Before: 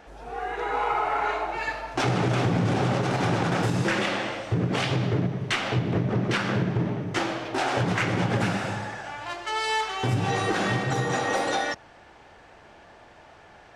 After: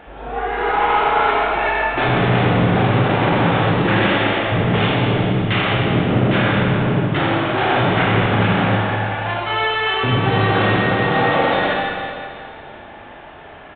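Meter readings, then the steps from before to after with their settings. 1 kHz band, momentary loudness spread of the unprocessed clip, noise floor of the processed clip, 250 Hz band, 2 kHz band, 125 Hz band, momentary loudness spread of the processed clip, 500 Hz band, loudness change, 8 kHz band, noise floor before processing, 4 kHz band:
+9.5 dB, 6 LU, -38 dBFS, +9.0 dB, +10.0 dB, +8.0 dB, 6 LU, +9.5 dB, +9.0 dB, under -40 dB, -51 dBFS, +9.0 dB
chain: added harmonics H 5 -11 dB, 6 -22 dB, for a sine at -12.5 dBFS; downsampling 8000 Hz; Schroeder reverb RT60 2.4 s, combs from 28 ms, DRR -3 dB

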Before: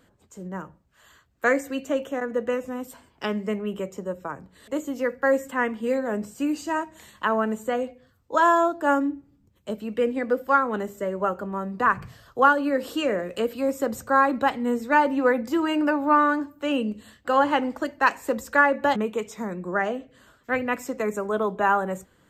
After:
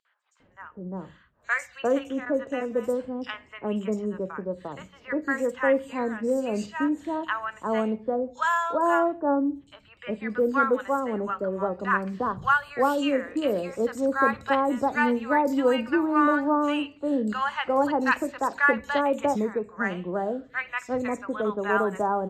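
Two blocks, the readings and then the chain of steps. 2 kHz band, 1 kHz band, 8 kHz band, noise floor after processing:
-1.0 dB, -2.5 dB, -4.0 dB, -58 dBFS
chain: three bands offset in time highs, mids, lows 50/400 ms, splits 1000/4700 Hz; vibrato 9.1 Hz 11 cents; low-pass opened by the level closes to 2500 Hz, open at -19 dBFS

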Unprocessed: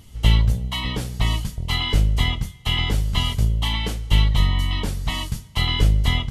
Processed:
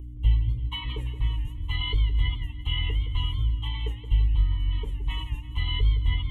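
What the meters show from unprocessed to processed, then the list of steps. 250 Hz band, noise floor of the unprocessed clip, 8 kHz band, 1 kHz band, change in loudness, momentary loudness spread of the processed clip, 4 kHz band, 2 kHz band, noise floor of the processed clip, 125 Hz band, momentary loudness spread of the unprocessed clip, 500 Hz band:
-15.0 dB, -43 dBFS, under -25 dB, -12.5 dB, -6.0 dB, 7 LU, -9.0 dB, -10.0 dB, -37 dBFS, -6.0 dB, 8 LU, -12.0 dB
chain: spectral contrast raised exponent 1.6; hum 60 Hz, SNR 12 dB; fixed phaser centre 1000 Hz, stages 8; warbling echo 0.169 s, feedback 45%, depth 129 cents, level -11 dB; gain -4 dB

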